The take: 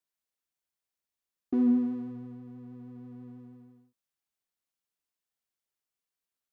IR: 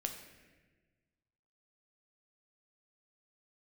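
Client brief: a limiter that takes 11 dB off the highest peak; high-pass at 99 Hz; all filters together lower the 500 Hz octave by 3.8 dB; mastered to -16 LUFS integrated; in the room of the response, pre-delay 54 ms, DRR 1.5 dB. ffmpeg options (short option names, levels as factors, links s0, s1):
-filter_complex "[0:a]highpass=99,equalizer=f=500:t=o:g=-5.5,alimiter=level_in=1.88:limit=0.0631:level=0:latency=1,volume=0.531,asplit=2[s0][s1];[1:a]atrim=start_sample=2205,adelay=54[s2];[s1][s2]afir=irnorm=-1:irlink=0,volume=0.841[s3];[s0][s3]amix=inputs=2:normalize=0,volume=10"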